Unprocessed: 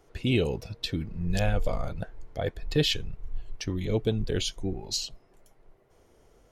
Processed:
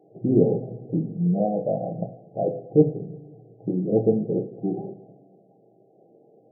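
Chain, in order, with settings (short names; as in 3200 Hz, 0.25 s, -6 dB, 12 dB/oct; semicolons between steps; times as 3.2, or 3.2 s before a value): two-slope reverb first 0.5 s, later 2.1 s, DRR 2.5 dB; FFT band-pass 110–820 Hz; gain +5.5 dB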